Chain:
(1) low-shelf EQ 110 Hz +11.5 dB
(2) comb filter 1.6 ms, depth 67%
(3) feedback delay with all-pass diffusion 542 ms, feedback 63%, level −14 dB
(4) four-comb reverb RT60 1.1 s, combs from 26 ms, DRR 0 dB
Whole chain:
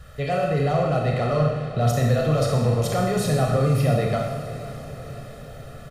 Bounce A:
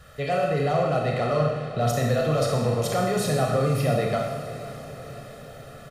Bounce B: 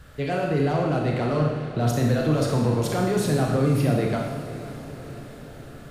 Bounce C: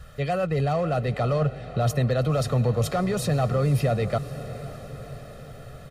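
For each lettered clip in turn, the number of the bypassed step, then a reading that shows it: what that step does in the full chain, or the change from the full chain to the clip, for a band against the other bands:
1, 125 Hz band −4.5 dB
2, 250 Hz band +4.0 dB
4, change in integrated loudness −3.0 LU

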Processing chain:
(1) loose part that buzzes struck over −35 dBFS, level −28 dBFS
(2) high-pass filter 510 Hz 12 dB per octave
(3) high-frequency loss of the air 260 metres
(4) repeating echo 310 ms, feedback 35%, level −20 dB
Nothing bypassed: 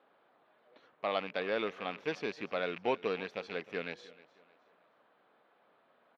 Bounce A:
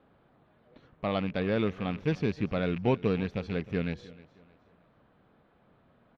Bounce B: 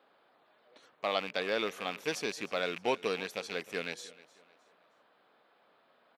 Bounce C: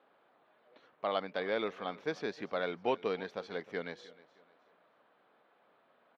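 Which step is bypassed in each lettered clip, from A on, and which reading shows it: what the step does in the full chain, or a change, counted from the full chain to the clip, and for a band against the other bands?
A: 2, 125 Hz band +20.0 dB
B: 3, 4 kHz band +5.5 dB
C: 1, 2 kHz band −2.0 dB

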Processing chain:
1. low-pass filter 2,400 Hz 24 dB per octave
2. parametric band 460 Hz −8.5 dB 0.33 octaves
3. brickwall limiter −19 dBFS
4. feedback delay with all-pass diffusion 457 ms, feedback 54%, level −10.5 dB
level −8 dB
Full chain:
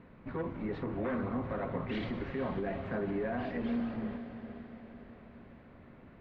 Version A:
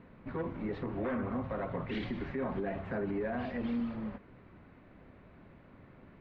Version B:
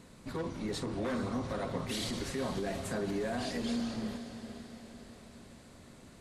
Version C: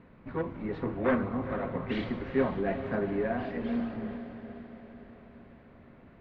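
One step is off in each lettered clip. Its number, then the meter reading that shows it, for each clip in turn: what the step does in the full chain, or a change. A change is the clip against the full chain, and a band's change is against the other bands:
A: 4, echo-to-direct ratio −9.0 dB to none audible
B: 1, 4 kHz band +12.0 dB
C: 3, change in crest factor +5.0 dB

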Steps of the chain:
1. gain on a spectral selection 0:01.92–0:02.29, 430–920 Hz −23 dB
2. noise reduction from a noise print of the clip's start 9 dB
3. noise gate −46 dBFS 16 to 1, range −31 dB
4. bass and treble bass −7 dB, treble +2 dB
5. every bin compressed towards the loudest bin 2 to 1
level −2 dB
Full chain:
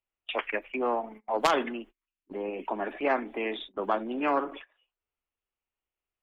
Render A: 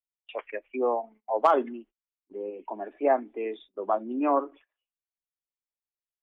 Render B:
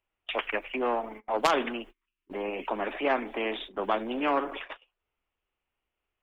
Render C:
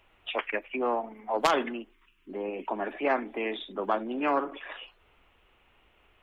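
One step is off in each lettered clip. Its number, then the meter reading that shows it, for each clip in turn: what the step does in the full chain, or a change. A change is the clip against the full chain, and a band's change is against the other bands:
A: 5, 2 kHz band −10.0 dB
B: 2, 4 kHz band +2.0 dB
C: 3, change in momentary loudness spread +4 LU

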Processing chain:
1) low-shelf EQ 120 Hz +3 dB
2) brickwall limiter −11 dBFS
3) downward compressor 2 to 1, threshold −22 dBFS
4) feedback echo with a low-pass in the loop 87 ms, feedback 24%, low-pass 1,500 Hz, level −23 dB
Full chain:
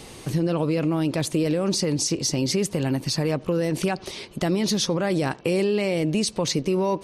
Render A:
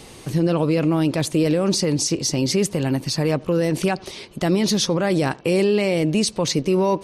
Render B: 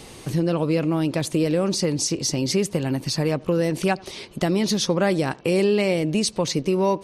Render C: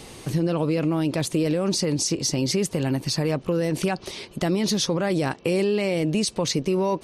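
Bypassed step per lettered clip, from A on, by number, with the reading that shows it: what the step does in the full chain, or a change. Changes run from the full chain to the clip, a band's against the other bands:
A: 3, average gain reduction 3.0 dB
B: 2, average gain reduction 2.0 dB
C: 4, echo-to-direct ratio −25.5 dB to none audible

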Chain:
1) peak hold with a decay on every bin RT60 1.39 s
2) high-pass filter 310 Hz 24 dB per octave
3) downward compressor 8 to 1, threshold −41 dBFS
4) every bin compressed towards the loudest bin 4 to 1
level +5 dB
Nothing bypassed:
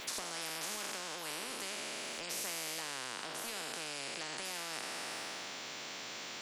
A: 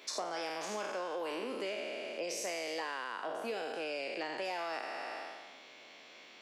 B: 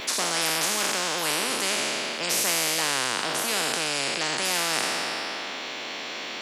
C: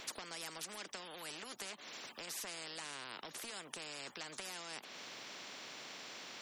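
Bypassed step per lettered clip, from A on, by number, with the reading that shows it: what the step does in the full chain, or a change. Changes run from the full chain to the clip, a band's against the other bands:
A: 4, 500 Hz band +11.5 dB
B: 3, average gain reduction 9.5 dB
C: 1, change in crest factor +6.0 dB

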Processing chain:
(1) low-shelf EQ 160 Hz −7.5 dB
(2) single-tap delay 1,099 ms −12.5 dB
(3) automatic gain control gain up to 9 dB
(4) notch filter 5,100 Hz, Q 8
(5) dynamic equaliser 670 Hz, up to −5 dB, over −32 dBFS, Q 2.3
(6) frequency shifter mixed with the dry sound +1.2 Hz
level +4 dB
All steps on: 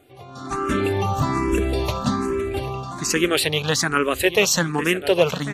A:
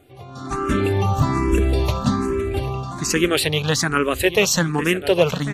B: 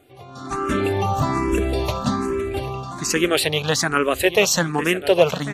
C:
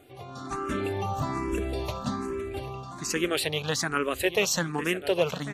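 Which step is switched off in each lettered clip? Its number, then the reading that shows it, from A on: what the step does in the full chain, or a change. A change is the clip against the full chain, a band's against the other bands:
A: 1, 125 Hz band +4.5 dB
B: 5, change in momentary loudness spread +1 LU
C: 3, change in momentary loudness spread +1 LU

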